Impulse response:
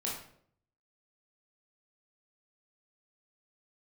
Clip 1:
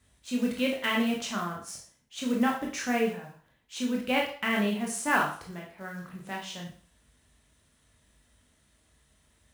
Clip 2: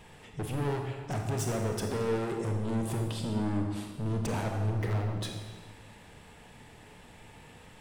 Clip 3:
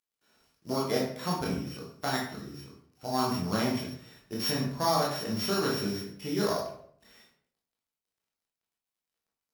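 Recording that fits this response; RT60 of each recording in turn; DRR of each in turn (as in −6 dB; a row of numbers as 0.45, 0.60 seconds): 3; 0.45, 1.5, 0.60 seconds; −1.5, 2.0, −4.5 decibels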